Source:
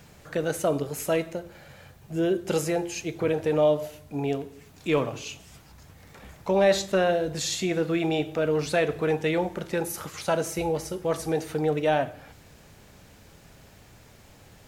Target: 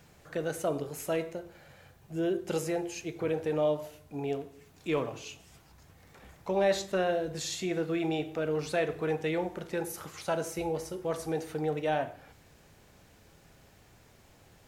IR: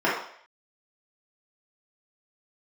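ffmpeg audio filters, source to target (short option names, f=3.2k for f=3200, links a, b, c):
-filter_complex "[0:a]asplit=2[a][b];[1:a]atrim=start_sample=2205,atrim=end_sample=6174[c];[b][c]afir=irnorm=-1:irlink=0,volume=-28dB[d];[a][d]amix=inputs=2:normalize=0,volume=-7dB"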